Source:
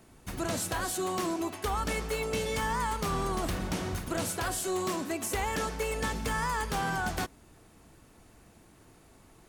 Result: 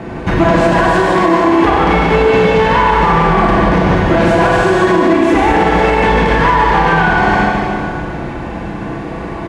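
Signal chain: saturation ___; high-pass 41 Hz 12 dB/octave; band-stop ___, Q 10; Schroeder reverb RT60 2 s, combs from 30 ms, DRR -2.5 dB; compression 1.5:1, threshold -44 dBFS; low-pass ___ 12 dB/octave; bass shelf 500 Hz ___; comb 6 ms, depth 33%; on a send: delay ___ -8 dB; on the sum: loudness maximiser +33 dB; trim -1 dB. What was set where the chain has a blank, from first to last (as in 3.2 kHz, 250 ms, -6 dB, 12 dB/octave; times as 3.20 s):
-36 dBFS, 1.3 kHz, 1.8 kHz, -2 dB, 150 ms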